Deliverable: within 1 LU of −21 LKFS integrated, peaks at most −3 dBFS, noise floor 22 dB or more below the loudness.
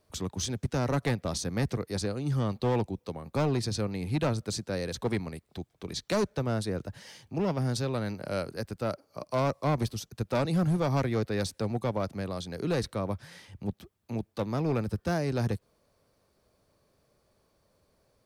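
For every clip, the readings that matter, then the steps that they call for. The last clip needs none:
share of clipped samples 1.8%; peaks flattened at −22.0 dBFS; integrated loudness −31.5 LKFS; sample peak −22.0 dBFS; target loudness −21.0 LKFS
→ clipped peaks rebuilt −22 dBFS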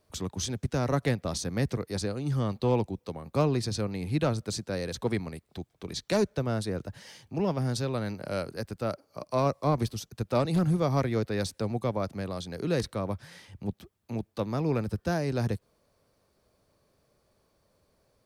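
share of clipped samples 0.0%; integrated loudness −30.5 LKFS; sample peak −13.0 dBFS; target loudness −21.0 LKFS
→ level +9.5 dB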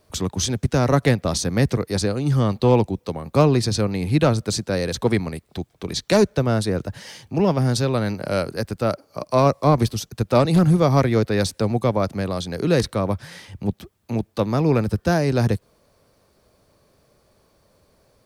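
integrated loudness −21.0 LKFS; sample peak −3.5 dBFS; background noise floor −62 dBFS

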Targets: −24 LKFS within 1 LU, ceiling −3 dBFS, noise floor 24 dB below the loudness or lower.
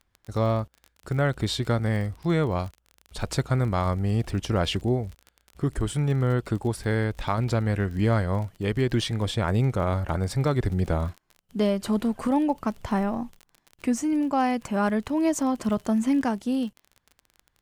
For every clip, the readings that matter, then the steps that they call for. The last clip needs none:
crackle rate 30 per second; integrated loudness −26.0 LKFS; sample peak −12.5 dBFS; target loudness −24.0 LKFS
→ click removal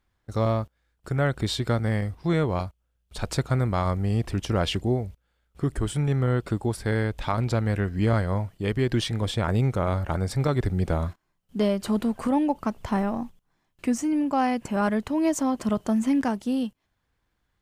crackle rate 0 per second; integrated loudness −26.0 LKFS; sample peak −12.5 dBFS; target loudness −24.0 LKFS
→ level +2 dB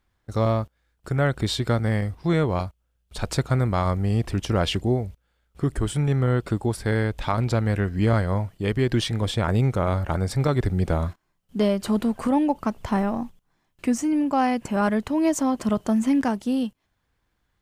integrated loudness −24.0 LKFS; sample peak −10.5 dBFS; background noise floor −73 dBFS

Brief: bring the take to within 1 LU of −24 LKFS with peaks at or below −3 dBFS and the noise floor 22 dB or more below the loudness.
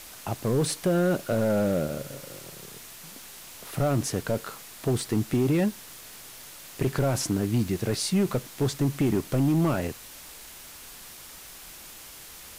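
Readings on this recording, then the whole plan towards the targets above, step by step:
share of clipped samples 1.1%; peaks flattened at −17.5 dBFS; background noise floor −45 dBFS; target noise floor −49 dBFS; integrated loudness −26.5 LKFS; sample peak −17.5 dBFS; target loudness −24.0 LKFS
→ clipped peaks rebuilt −17.5 dBFS
broadband denoise 6 dB, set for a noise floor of −45 dBFS
level +2.5 dB

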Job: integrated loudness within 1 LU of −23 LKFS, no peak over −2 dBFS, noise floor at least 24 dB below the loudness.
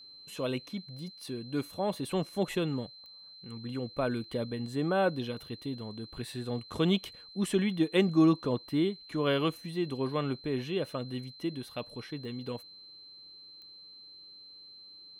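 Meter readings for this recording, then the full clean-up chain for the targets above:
number of clicks 4; interfering tone 4,100 Hz; level of the tone −49 dBFS; integrated loudness −32.5 LKFS; sample peak −14.0 dBFS; target loudness −23.0 LKFS
→ click removal
notch filter 4,100 Hz, Q 30
level +9.5 dB

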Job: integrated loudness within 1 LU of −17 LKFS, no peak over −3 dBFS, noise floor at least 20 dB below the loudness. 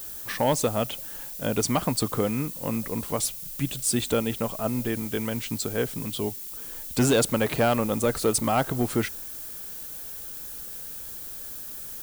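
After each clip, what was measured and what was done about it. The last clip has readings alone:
share of clipped samples 0.3%; peaks flattened at −15.0 dBFS; background noise floor −38 dBFS; target noise floor −48 dBFS; integrated loudness −27.5 LKFS; sample peak −15.0 dBFS; target loudness −17.0 LKFS
→ clipped peaks rebuilt −15 dBFS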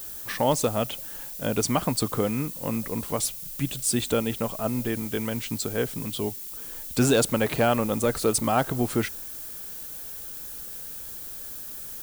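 share of clipped samples 0.0%; background noise floor −38 dBFS; target noise floor −47 dBFS
→ broadband denoise 9 dB, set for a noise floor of −38 dBFS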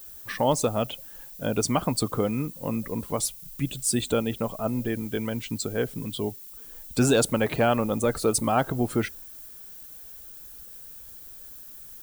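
background noise floor −44 dBFS; target noise floor −47 dBFS
→ broadband denoise 6 dB, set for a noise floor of −44 dBFS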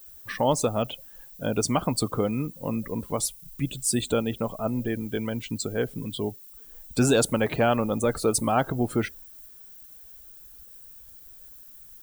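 background noise floor −48 dBFS; integrated loudness −27.0 LKFS; sample peak −9.5 dBFS; target loudness −17.0 LKFS
→ level +10 dB
brickwall limiter −3 dBFS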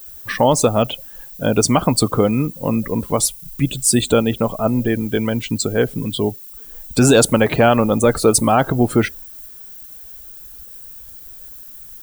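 integrated loudness −17.0 LKFS; sample peak −3.0 dBFS; background noise floor −38 dBFS

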